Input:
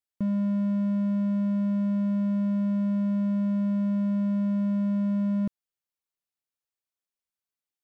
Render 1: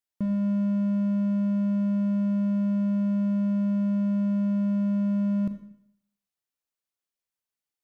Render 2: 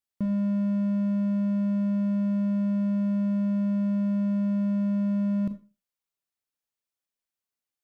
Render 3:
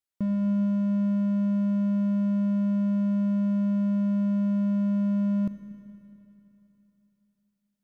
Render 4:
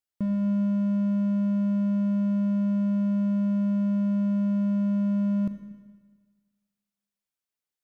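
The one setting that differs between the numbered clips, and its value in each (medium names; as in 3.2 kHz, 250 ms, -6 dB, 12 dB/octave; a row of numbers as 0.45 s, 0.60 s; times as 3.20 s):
Schroeder reverb, RT60: 0.7 s, 0.31 s, 3.3 s, 1.5 s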